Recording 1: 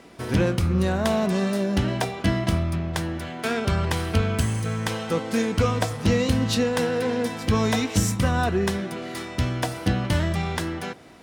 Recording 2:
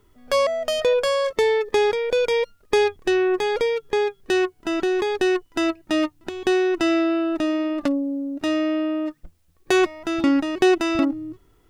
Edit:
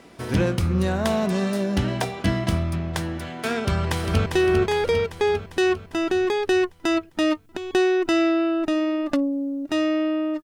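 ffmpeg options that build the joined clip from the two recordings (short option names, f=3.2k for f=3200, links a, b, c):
-filter_complex "[0:a]apad=whole_dur=10.43,atrim=end=10.43,atrim=end=4.262[a];[1:a]atrim=start=2.978:end=9.15[b];[a][b]acrossfade=d=0.004:c1=hsin:c2=hsin,asplit=2[c][d];[d]afade=t=in:st=3.63:d=0.01,afade=t=out:st=4.26:d=0.01,aecho=0:1:400|800|1200|1600|2000|2400|2800|3200:0.530884|0.318531|0.191118|0.114671|0.0688026|0.0412816|0.0247689|0.0148614[e];[c][e]amix=inputs=2:normalize=0"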